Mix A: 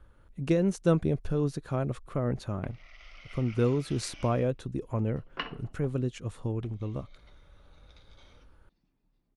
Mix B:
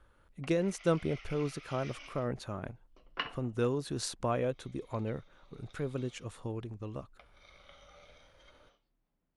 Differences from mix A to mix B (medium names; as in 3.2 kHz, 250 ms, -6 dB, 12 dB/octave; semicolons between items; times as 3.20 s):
background: entry -2.20 s; master: add bass shelf 360 Hz -9 dB